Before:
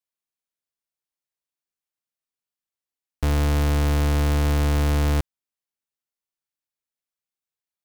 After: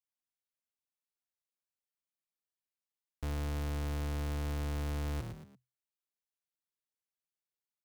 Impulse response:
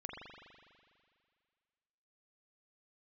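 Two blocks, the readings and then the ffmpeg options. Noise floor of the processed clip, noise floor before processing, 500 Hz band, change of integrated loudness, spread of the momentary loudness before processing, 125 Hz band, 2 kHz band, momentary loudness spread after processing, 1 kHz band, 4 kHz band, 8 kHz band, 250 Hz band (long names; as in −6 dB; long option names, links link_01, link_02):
below −85 dBFS, below −85 dBFS, −15.0 dB, −15.5 dB, 5 LU, −15.0 dB, −15.0 dB, 6 LU, −15.5 dB, −15.0 dB, −15.0 dB, −15.0 dB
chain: -filter_complex "[0:a]asplit=4[link_01][link_02][link_03][link_04];[link_02]adelay=114,afreqshift=42,volume=-13dB[link_05];[link_03]adelay=228,afreqshift=84,volume=-22.6dB[link_06];[link_04]adelay=342,afreqshift=126,volume=-32.3dB[link_07];[link_01][link_05][link_06][link_07]amix=inputs=4:normalize=0,asoftclip=type=tanh:threshold=-26.5dB,volume=-8dB"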